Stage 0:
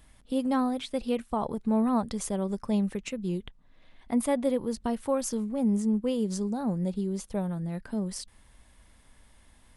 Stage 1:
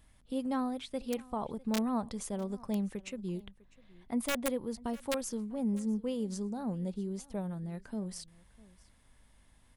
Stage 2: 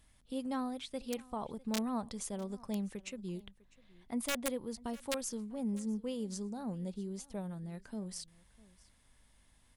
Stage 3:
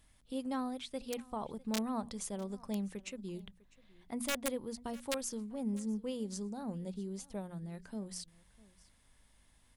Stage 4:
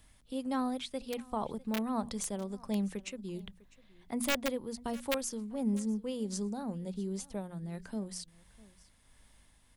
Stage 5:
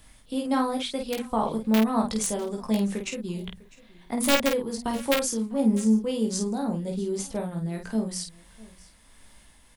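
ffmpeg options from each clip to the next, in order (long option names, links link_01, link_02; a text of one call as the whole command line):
ffmpeg -i in.wav -af "aeval=exprs='(mod(7.08*val(0)+1,2)-1)/7.08':channel_layout=same,aeval=exprs='val(0)+0.000708*(sin(2*PI*50*n/s)+sin(2*PI*2*50*n/s)/2+sin(2*PI*3*50*n/s)/3+sin(2*PI*4*50*n/s)/4+sin(2*PI*5*50*n/s)/5)':channel_layout=same,aecho=1:1:651:0.075,volume=-6.5dB" out.wav
ffmpeg -i in.wav -af "equalizer=frequency=6300:width=0.39:gain=5,volume=-4dB" out.wav
ffmpeg -i in.wav -af "bandreject=frequency=60:width_type=h:width=6,bandreject=frequency=120:width_type=h:width=6,bandreject=frequency=180:width_type=h:width=6,bandreject=frequency=240:width_type=h:width=6" out.wav
ffmpeg -i in.wav -filter_complex "[0:a]acrossover=split=350|1100|3700[link_01][link_02][link_03][link_04];[link_04]aeval=exprs='(mod(23.7*val(0)+1,2)-1)/23.7':channel_layout=same[link_05];[link_01][link_02][link_03][link_05]amix=inputs=4:normalize=0,tremolo=f=1.4:d=0.33,volume=5dB" out.wav
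ffmpeg -i in.wav -filter_complex "[0:a]bandreject=frequency=50:width_type=h:width=6,bandreject=frequency=100:width_type=h:width=6,asplit=2[link_01][link_02];[link_02]aecho=0:1:18|50:0.596|0.562[link_03];[link_01][link_03]amix=inputs=2:normalize=0,volume=7.5dB" out.wav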